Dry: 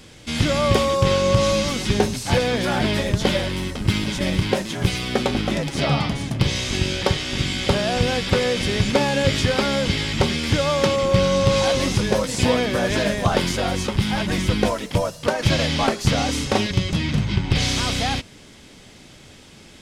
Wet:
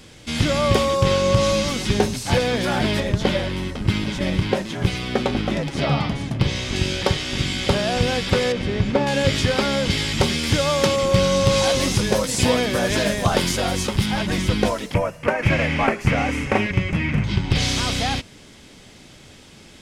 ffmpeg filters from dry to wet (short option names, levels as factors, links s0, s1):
-filter_complex "[0:a]asettb=1/sr,asplit=3[s0][s1][s2];[s0]atrim=end=3.004[s3];[s1]atrim=start=3:end=6.76,asetpts=PTS-STARTPTS,afade=t=in:d=0.004:c=qsin,afade=t=out:st=3.756:d=0.004:c=qsin,highshelf=f=5100:g=-8.5[s4];[s2]atrim=start=6.756[s5];[s3][s4]acrossfade=d=0.004:c1=hsin:c2=qsin[s6];[s6][s5]acrossfade=d=0.004:c1=qsin:c2=hsin,asettb=1/sr,asplit=3[s7][s8][s9];[s7]atrim=end=8.524[s10];[s8]atrim=start=8.52:end=9.07,asetpts=PTS-STARTPTS,afade=t=in:d=0.004:c=qsin,afade=t=out:st=0.546:d=0.004:c=qsin,lowpass=f=1400:p=1[s11];[s9]atrim=start=9.066[s12];[s10][s11]acrossfade=d=0.004:c1=hsin:c2=qsin[s13];[s13][s12]acrossfade=d=0.004:c1=qsin:c2=hsin,asettb=1/sr,asplit=3[s14][s15][s16];[s14]atrim=end=9.904[s17];[s15]atrim=start=9.9:end=14.06,asetpts=PTS-STARTPTS,afade=t=in:d=0.004:c=qsin,afade=t=out:st=4.156:d=0.004:c=qsin,highshelf=f=6400:g=7.5[s18];[s16]atrim=start=14.056[s19];[s17][s18]acrossfade=d=0.004:c1=hsin:c2=qsin[s20];[s20][s19]acrossfade=d=0.004:c1=qsin:c2=hsin,asettb=1/sr,asplit=3[s21][s22][s23];[s21]atrim=end=14.944[s24];[s22]atrim=start=14.94:end=17.24,asetpts=PTS-STARTPTS,afade=t=in:d=0.004:c=qsin,afade=t=out:st=2.296:d=0.004:c=qsin,highshelf=f=3000:t=q:w=3:g=-8.5[s25];[s23]atrim=start=17.236[s26];[s24][s25]acrossfade=d=0.004:c1=hsin:c2=qsin[s27];[s27][s26]acrossfade=d=0.004:c1=qsin:c2=hsin"